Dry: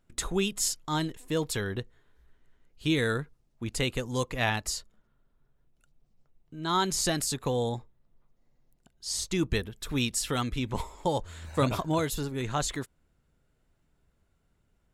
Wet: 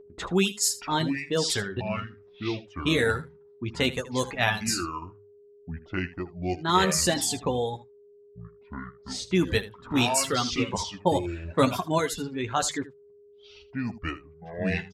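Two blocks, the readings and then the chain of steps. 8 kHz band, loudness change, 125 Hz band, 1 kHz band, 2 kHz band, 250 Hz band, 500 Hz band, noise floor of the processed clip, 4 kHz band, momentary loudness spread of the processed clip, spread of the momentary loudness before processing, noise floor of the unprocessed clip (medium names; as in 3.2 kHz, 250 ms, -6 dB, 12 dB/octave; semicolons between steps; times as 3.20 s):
+3.5 dB, +3.0 dB, +1.5 dB, +5.0 dB, +5.5 dB, +4.0 dB, +4.5 dB, -55 dBFS, +4.5 dB, 16 LU, 10 LU, -72 dBFS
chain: ever faster or slower copies 561 ms, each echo -6 st, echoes 2, each echo -6 dB; level-controlled noise filter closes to 470 Hz, open at -24.5 dBFS; high-pass 75 Hz; hum notches 50/100/150 Hz; reverb removal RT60 1.8 s; whistle 410 Hz -48 dBFS; on a send: early reflections 11 ms -6.5 dB, 79 ms -16 dB; on the sum: trim +4 dB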